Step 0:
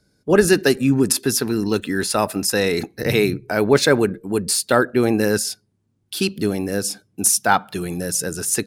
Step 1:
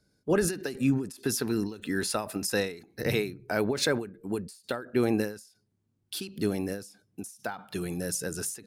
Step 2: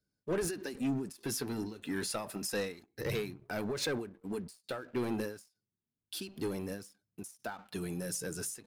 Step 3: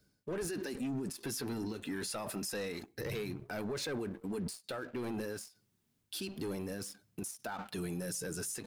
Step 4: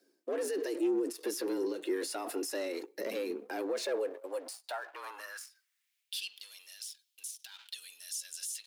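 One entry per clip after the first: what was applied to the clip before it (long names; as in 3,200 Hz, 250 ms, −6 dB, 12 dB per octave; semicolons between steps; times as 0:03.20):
brickwall limiter −7.5 dBFS, peak gain reduction 6 dB; every ending faded ahead of time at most 120 dB per second; level −7 dB
leveller curve on the samples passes 2; flanger 0.29 Hz, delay 0.5 ms, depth 7.5 ms, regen −57%; level −8 dB
reversed playback; downward compressor 6 to 1, threshold −43 dBFS, peak gain reduction 13 dB; reversed playback; brickwall limiter −45.5 dBFS, peak gain reduction 10 dB; level +14 dB
high-pass filter sweep 260 Hz → 3,300 Hz, 0:03.58–0:06.43; frequency shifter +85 Hz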